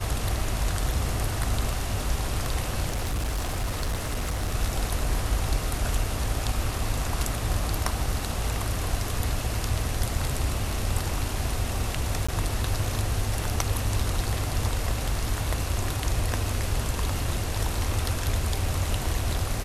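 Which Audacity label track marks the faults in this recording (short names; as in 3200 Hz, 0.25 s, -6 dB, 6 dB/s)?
2.890000	4.550000	clipped -23.5 dBFS
12.270000	12.290000	gap 15 ms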